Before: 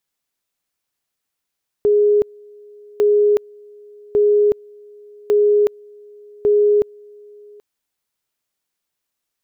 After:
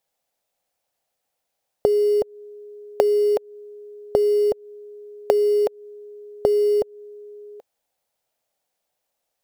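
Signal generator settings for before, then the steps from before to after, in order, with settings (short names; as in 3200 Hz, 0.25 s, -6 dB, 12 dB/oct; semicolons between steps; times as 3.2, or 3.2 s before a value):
two-level tone 415 Hz -10.5 dBFS, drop 28.5 dB, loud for 0.37 s, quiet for 0.78 s, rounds 5
in parallel at -8 dB: bit-crush 4-bit; on the sum: compressor 5:1, threshold -20 dBFS; band shelf 640 Hz +11.5 dB 1 oct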